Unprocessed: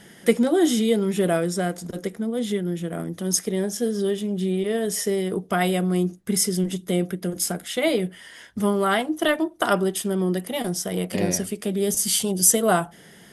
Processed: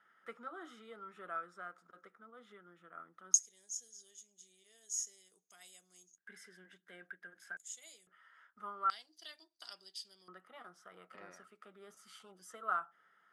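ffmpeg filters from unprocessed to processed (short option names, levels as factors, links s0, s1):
-af "asetnsamples=n=441:p=0,asendcmd='3.34 bandpass f 6600;6.18 bandpass f 1600;7.57 bandpass f 6900;8.07 bandpass f 1300;8.9 bandpass f 4700;10.28 bandpass f 1300',bandpass=f=1300:t=q:w=15:csg=0"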